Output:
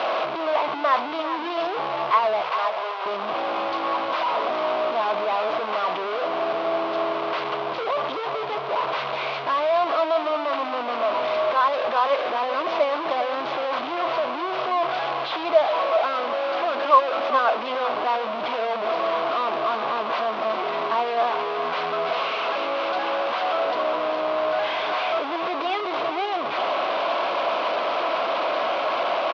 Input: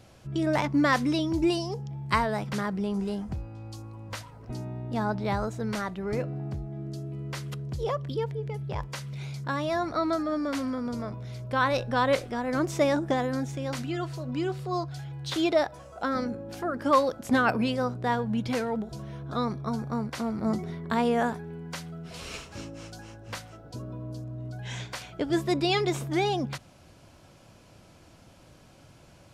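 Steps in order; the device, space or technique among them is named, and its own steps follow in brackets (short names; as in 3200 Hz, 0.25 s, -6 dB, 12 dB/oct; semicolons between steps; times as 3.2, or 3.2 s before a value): digital answering machine (BPF 350–3200 Hz; delta modulation 32 kbps, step -20.5 dBFS; speaker cabinet 460–3600 Hz, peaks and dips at 660 Hz +9 dB, 1100 Hz +9 dB, 1800 Hz -6 dB); 2.41–3.06 HPF 470 Hz 24 dB/oct; echo 0.399 s -10.5 dB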